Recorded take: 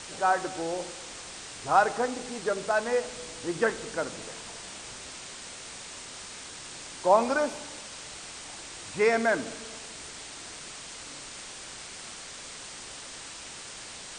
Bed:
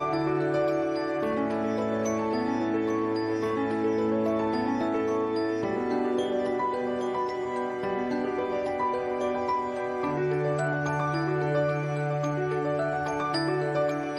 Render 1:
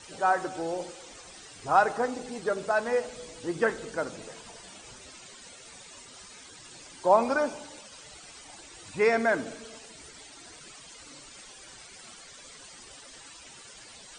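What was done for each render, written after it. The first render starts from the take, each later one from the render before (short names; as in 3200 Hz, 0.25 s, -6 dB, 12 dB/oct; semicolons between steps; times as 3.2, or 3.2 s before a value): denoiser 13 dB, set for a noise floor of -43 dBFS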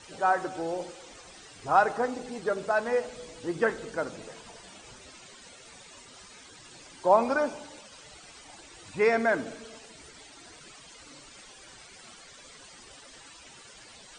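high shelf 6500 Hz -6 dB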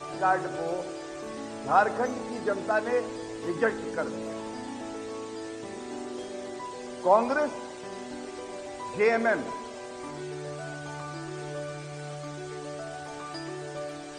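add bed -10.5 dB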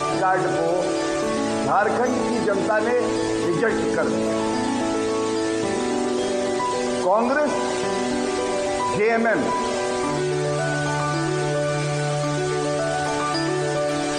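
fast leveller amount 70%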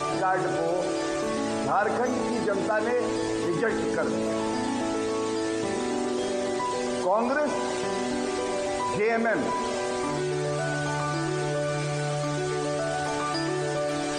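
gain -5 dB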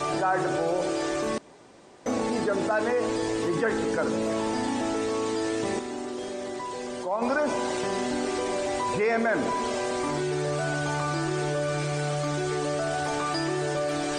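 1.38–2.06 room tone; 5.79–7.22 gate -22 dBFS, range -6 dB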